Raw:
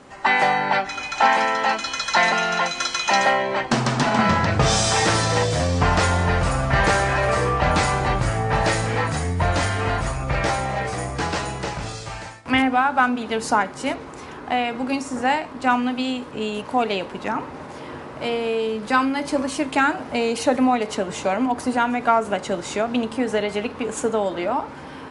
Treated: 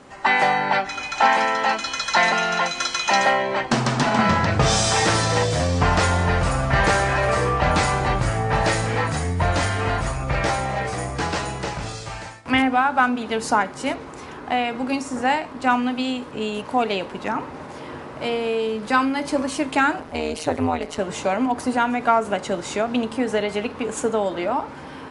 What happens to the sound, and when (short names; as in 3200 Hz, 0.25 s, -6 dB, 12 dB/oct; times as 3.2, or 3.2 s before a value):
20–20.99 AM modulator 160 Hz, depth 90%